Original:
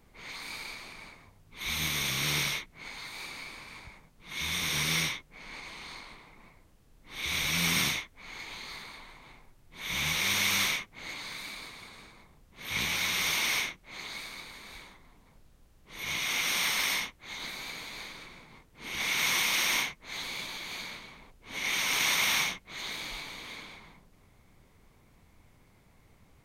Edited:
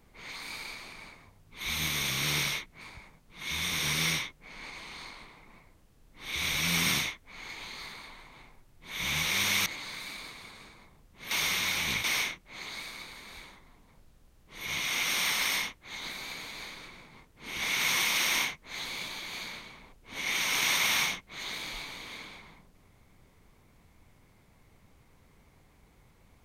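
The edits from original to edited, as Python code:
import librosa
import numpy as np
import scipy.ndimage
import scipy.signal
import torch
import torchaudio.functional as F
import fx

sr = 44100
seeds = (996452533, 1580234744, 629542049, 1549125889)

y = fx.edit(x, sr, fx.cut(start_s=2.81, length_s=0.9),
    fx.cut(start_s=10.56, length_s=0.48),
    fx.reverse_span(start_s=12.69, length_s=0.73), tone=tone)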